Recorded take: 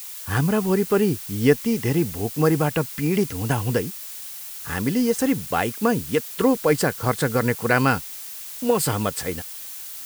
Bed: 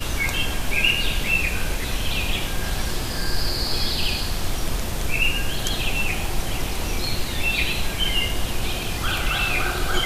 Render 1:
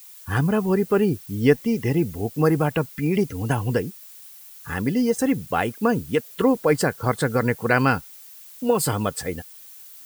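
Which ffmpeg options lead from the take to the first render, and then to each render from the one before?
-af "afftdn=nr=11:nf=-36"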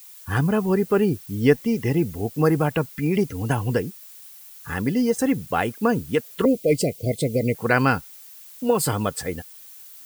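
-filter_complex "[0:a]asettb=1/sr,asplit=3[a][b][c];[a]atrim=end=6.454[d];[b]atrim=start=6.45:end=7.55,asetpts=PTS-STARTPTS,afade=t=in:d=0.004:c=qsin,afade=t=out:st=1.096:d=0.004:c=qsin,asuperstop=centerf=1200:order=20:qfactor=0.87[e];[c]atrim=start=7.546[f];[d][e]acrossfade=d=0.004:c1=hsin:c2=qsin[g];[g][f]acrossfade=d=0.004:c1=qsin:c2=hsin"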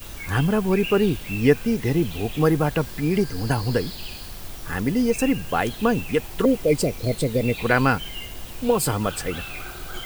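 -filter_complex "[1:a]volume=-12.5dB[a];[0:a][a]amix=inputs=2:normalize=0"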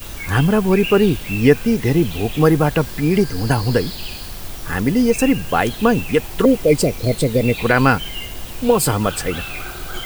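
-af "volume=5.5dB,alimiter=limit=-1dB:level=0:latency=1"

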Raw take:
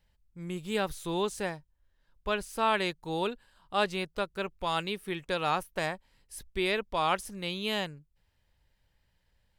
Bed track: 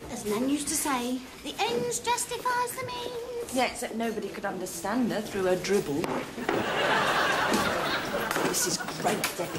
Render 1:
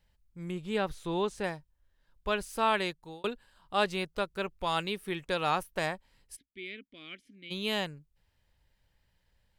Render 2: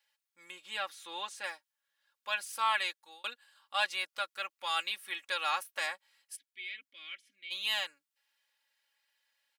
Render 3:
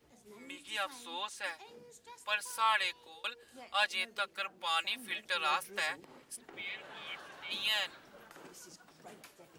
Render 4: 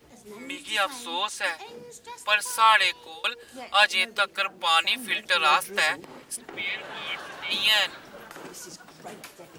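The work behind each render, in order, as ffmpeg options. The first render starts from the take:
-filter_complex "[0:a]asettb=1/sr,asplit=3[a][b][c];[a]atrim=end=0.514[d];[b]atrim=start=0.51:end=1.44,asetpts=PTS-STARTPTS,afade=t=in:d=0.004:c=qsin,afade=t=out:st=0.926:d=0.004:c=qsin,aemphasis=mode=reproduction:type=50kf[e];[c]atrim=start=1.436[f];[d][e]acrossfade=d=0.004:c1=hsin:c2=qsin[g];[g][f]acrossfade=d=0.004:c1=qsin:c2=hsin,asplit=3[h][i][j];[h]afade=t=out:st=6.35:d=0.02[k];[i]asplit=3[l][m][n];[l]bandpass=f=270:t=q:w=8,volume=0dB[o];[m]bandpass=f=2.29k:t=q:w=8,volume=-6dB[p];[n]bandpass=f=3.01k:t=q:w=8,volume=-9dB[q];[o][p][q]amix=inputs=3:normalize=0,afade=t=in:st=6.35:d=0.02,afade=t=out:st=7.5:d=0.02[r];[j]afade=t=in:st=7.5:d=0.02[s];[k][r][s]amix=inputs=3:normalize=0,asplit=2[t][u];[t]atrim=end=3.24,asetpts=PTS-STARTPTS,afade=t=out:st=2.59:d=0.65:c=qsin[v];[u]atrim=start=3.24,asetpts=PTS-STARTPTS,afade=t=in:d=0.004:c=hsin[w];[v][w]concat=n=2:v=0:a=1"
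-af "highpass=1.3k,aecho=1:1:3.6:0.8"
-filter_complex "[1:a]volume=-26dB[a];[0:a][a]amix=inputs=2:normalize=0"
-af "volume=11.5dB"

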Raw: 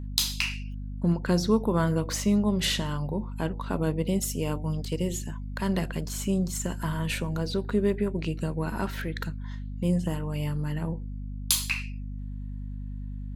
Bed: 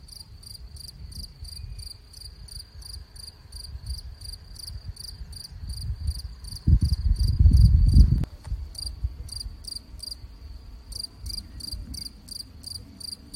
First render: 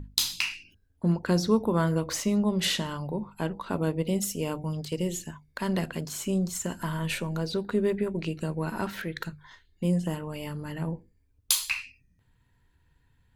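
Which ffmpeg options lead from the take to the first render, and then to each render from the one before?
-af "bandreject=f=50:t=h:w=6,bandreject=f=100:t=h:w=6,bandreject=f=150:t=h:w=6,bandreject=f=200:t=h:w=6,bandreject=f=250:t=h:w=6"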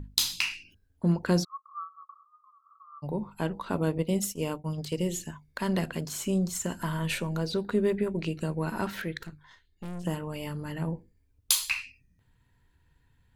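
-filter_complex "[0:a]asplit=3[a][b][c];[a]afade=t=out:st=1.43:d=0.02[d];[b]asuperpass=centerf=1200:order=12:qfactor=5.5,afade=t=in:st=1.43:d=0.02,afade=t=out:st=3.02:d=0.02[e];[c]afade=t=in:st=3.02:d=0.02[f];[d][e][f]amix=inputs=3:normalize=0,asettb=1/sr,asplit=3[g][h][i];[g]atrim=end=3.984[j];[h]atrim=start=3.98:end=4.78,asetpts=PTS-STARTPTS,afade=t=in:d=0.004:c=qsin,afade=t=out:st=0.796:d=0.004:c=qsin,agate=range=-33dB:threshold=-30dB:ratio=3:release=100:detection=peak[k];[i]atrim=start=4.776[l];[j][k]acrossfade=d=0.004:c1=hsin:c2=qsin[m];[m][l]acrossfade=d=0.004:c1=qsin:c2=hsin,asettb=1/sr,asplit=3[n][o][p];[n]atrim=end=9.174[q];[o]atrim=start=9.17:end=10.05,asetpts=PTS-STARTPTS,afade=t=in:d=0.004:c=qsin,afade=t=out:st=0.876:d=0.004:c=qsin,aeval=exprs='(tanh(63.1*val(0)+0.75)-tanh(0.75))/63.1':c=same[r];[p]atrim=start=10.046[s];[q][r]acrossfade=d=0.004:c1=hsin:c2=qsin[t];[t][s]acrossfade=d=0.004:c1=qsin:c2=hsin"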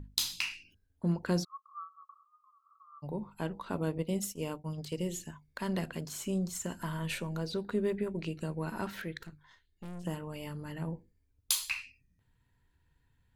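-af "volume=-5.5dB"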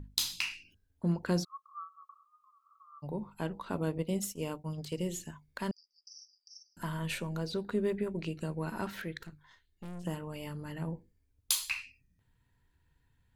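-filter_complex "[0:a]asettb=1/sr,asplit=3[a][b][c];[a]atrim=end=5.714[d];[b]atrim=start=5.71:end=6.77,asetpts=PTS-STARTPTS,afade=t=in:d=0.004:c=qsin,afade=t=out:st=1.056:d=0.004:c=qsin,asuperpass=centerf=5300:order=20:qfactor=3.7[e];[c]atrim=start=6.766[f];[d][e]acrossfade=d=0.004:c1=hsin:c2=qsin[g];[g][f]acrossfade=d=0.004:c1=qsin:c2=hsin"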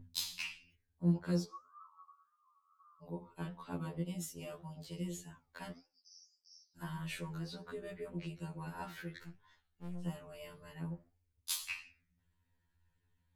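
-af "flanger=delay=9.3:depth=7.2:regen=81:speed=1.7:shape=triangular,afftfilt=real='re*2*eq(mod(b,4),0)':imag='im*2*eq(mod(b,4),0)':win_size=2048:overlap=0.75"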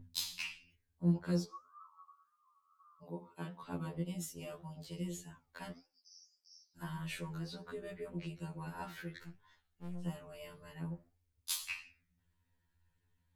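-filter_complex "[0:a]asettb=1/sr,asplit=3[a][b][c];[a]atrim=end=3.034[d];[b]atrim=start=3.03:end=3.63,asetpts=PTS-STARTPTS,afade=t=in:d=0.004:c=qsin,afade=t=out:st=0.596:d=0.004:c=qsin,highpass=150[e];[c]atrim=start=3.626[f];[d][e]acrossfade=d=0.004:c1=hsin:c2=qsin[g];[g][f]acrossfade=d=0.004:c1=qsin:c2=hsin"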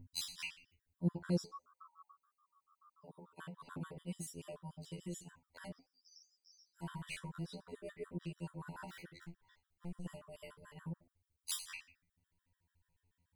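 -af "aexciter=amount=1.1:drive=4.2:freq=8.2k,afftfilt=real='re*gt(sin(2*PI*6.9*pts/sr)*(1-2*mod(floor(b*sr/1024/980),2)),0)':imag='im*gt(sin(2*PI*6.9*pts/sr)*(1-2*mod(floor(b*sr/1024/980),2)),0)':win_size=1024:overlap=0.75"

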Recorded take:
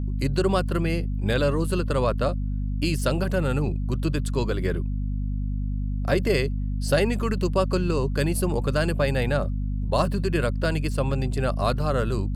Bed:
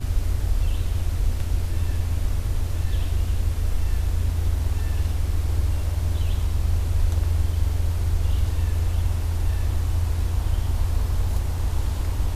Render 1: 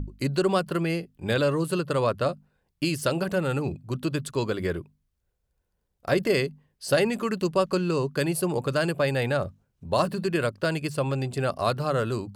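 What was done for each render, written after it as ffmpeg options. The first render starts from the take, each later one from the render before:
-af "bandreject=f=50:t=h:w=6,bandreject=f=100:t=h:w=6,bandreject=f=150:t=h:w=6,bandreject=f=200:t=h:w=6,bandreject=f=250:t=h:w=6"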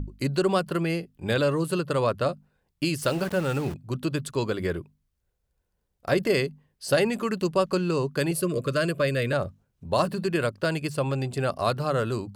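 -filter_complex "[0:a]asettb=1/sr,asplit=3[a][b][c];[a]atrim=end=3.024[d];[b]atrim=start=3.02:end=3.74,asetpts=PTS-STARTPTS,afade=t=in:d=0.004:c=qsin,afade=t=out:st=0.716:d=0.004:c=qsin,aeval=exprs='val(0)*gte(abs(val(0)),0.0168)':c=same[e];[c]atrim=start=3.736[f];[d][e]acrossfade=d=0.004:c1=hsin:c2=qsin[g];[g][f]acrossfade=d=0.004:c1=qsin:c2=hsin,asettb=1/sr,asplit=3[h][i][j];[h]atrim=end=8.314[k];[i]atrim=start=8.31:end=9.33,asetpts=PTS-STARTPTS,afade=t=in:d=0.004:c=qsin,afade=t=out:st=1.016:d=0.004:c=qsin,asuperstop=centerf=830:order=20:qfactor=2.6[l];[j]atrim=start=9.326[m];[k][l]acrossfade=d=0.004:c1=hsin:c2=qsin[n];[n][m]acrossfade=d=0.004:c1=qsin:c2=hsin"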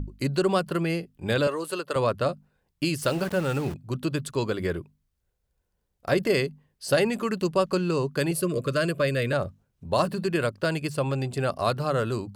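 -filter_complex "[0:a]asettb=1/sr,asplit=3[a][b][c];[a]atrim=end=1.474[d];[b]atrim=start=1.47:end=1.96,asetpts=PTS-STARTPTS,afade=t=in:d=0.004:c=qsin,afade=t=out:st=0.486:d=0.004:c=qsin,highpass=430[e];[c]atrim=start=1.956[f];[d][e]acrossfade=d=0.004:c1=hsin:c2=qsin[g];[g][f]acrossfade=d=0.004:c1=qsin:c2=hsin"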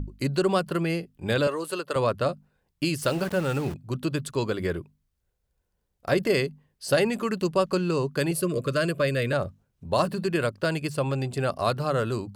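-af anull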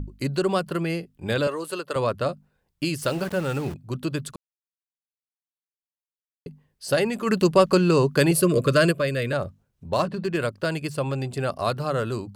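-filter_complex "[0:a]asplit=3[a][b][c];[a]afade=t=out:st=7.26:d=0.02[d];[b]acontrast=77,afade=t=in:st=7.26:d=0.02,afade=t=out:st=8.91:d=0.02[e];[c]afade=t=in:st=8.91:d=0.02[f];[d][e][f]amix=inputs=3:normalize=0,asettb=1/sr,asplit=3[g][h][i];[g]atrim=end=9.894[j];[h]atrim=start=9.89:end=10.37,asetpts=PTS-STARTPTS,afade=t=in:d=0.004:c=qsin,afade=t=out:st=0.476:d=0.004:c=qsin,adynamicsmooth=sensitivity=7:basefreq=3.5k[k];[i]atrim=start=10.366[l];[j][k]acrossfade=d=0.004:c1=hsin:c2=qsin[m];[m][l]acrossfade=d=0.004:c1=qsin:c2=hsin,asplit=3[n][o][p];[n]atrim=end=4.36,asetpts=PTS-STARTPTS,afade=t=out:st=4.356:d=0.004:c=hsin[q];[o]atrim=start=4.36:end=6.46,asetpts=PTS-STARTPTS,volume=0[r];[p]atrim=start=6.46,asetpts=PTS-STARTPTS,afade=t=in:d=0.004:c=hsin[s];[q][r][s]concat=n=3:v=0:a=1"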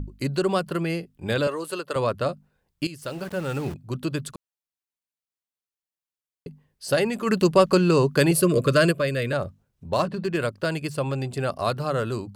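-filter_complex "[0:a]asplit=2[a][b];[a]atrim=end=2.87,asetpts=PTS-STARTPTS,afade=t=out:st=2.866:d=0.004:c=hsin:silence=0.199526[c];[b]atrim=start=2.87,asetpts=PTS-STARTPTS,afade=t=in:d=0.82:silence=0.199526[d];[c][d]concat=n=2:v=0:a=1"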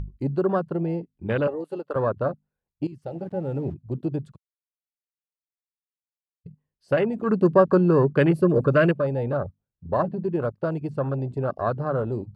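-af "afwtdn=0.0447,aemphasis=mode=reproduction:type=75fm"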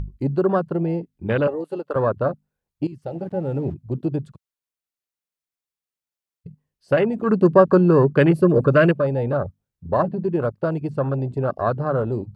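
-af "volume=3.5dB"

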